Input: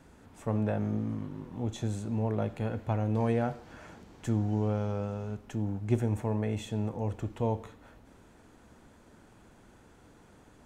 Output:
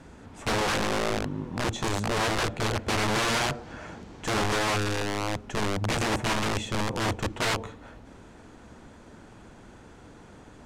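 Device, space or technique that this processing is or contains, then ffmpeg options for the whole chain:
overflowing digital effects unit: -af "aeval=exprs='(mod(28.2*val(0)+1,2)-1)/28.2':c=same,lowpass=8.1k,volume=8dB"

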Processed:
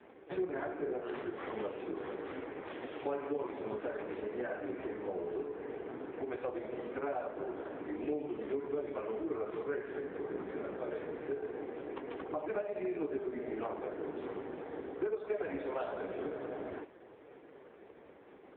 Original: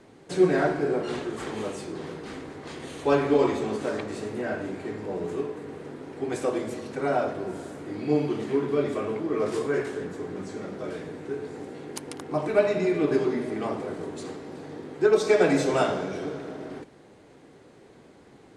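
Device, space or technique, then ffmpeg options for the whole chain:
voicemail: -af "highpass=330,lowpass=2.6k,acompressor=threshold=-35dB:ratio=6,volume=2dB" -ar 8000 -c:a libopencore_amrnb -b:a 4750

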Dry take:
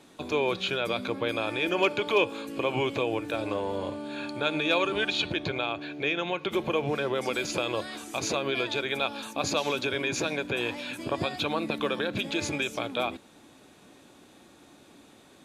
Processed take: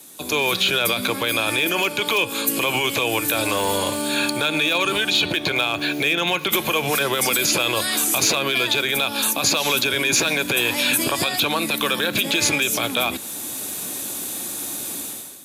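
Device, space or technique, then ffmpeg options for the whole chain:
FM broadcast chain: -filter_complex "[0:a]highpass=75,dynaudnorm=f=120:g=7:m=15dB,acrossover=split=230|880|4000[a][b][c][d];[a]acompressor=threshold=-33dB:ratio=4[e];[b]acompressor=threshold=-27dB:ratio=4[f];[c]acompressor=threshold=-21dB:ratio=4[g];[d]acompressor=threshold=-42dB:ratio=4[h];[e][f][g][h]amix=inputs=4:normalize=0,aemphasis=mode=production:type=50fm,alimiter=limit=-13.5dB:level=0:latency=1:release=15,asoftclip=type=hard:threshold=-15dB,lowpass=f=15k:w=0.5412,lowpass=f=15k:w=1.3066,aemphasis=mode=production:type=50fm,volume=1.5dB"

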